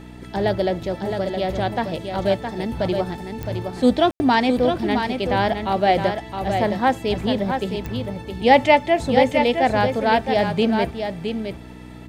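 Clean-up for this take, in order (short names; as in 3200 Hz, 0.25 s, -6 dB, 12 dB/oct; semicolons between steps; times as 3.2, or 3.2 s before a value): de-click; de-hum 61.6 Hz, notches 5; room tone fill 4.11–4.2; inverse comb 0.665 s -6.5 dB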